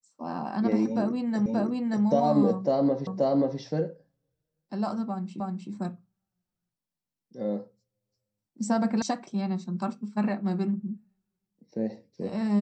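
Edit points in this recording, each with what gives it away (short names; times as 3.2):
1.46 repeat of the last 0.58 s
3.07 repeat of the last 0.53 s
5.4 repeat of the last 0.31 s
9.02 sound cut off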